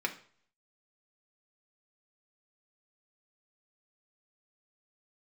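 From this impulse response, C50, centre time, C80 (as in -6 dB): 13.5 dB, 9 ms, 17.5 dB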